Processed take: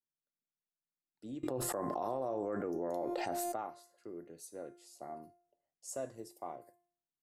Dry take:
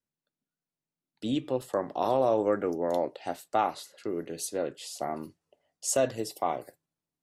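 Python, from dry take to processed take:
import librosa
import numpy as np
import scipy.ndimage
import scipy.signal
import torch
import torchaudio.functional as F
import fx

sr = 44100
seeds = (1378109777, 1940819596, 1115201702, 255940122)

y = fx.peak_eq(x, sr, hz=3200.0, db=-12.5, octaves=1.0)
y = fx.comb_fb(y, sr, f0_hz=350.0, decay_s=0.54, harmonics='all', damping=0.0, mix_pct=70)
y = fx.env_flatten(y, sr, amount_pct=100, at=(1.43, 3.56))
y = y * 10.0 ** (-4.5 / 20.0)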